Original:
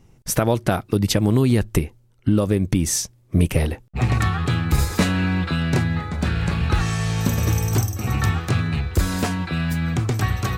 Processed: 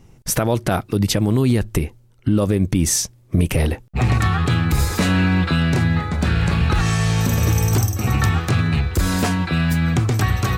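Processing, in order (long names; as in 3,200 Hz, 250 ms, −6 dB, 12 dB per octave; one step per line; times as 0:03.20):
brickwall limiter −13 dBFS, peak gain reduction 6.5 dB
level +4.5 dB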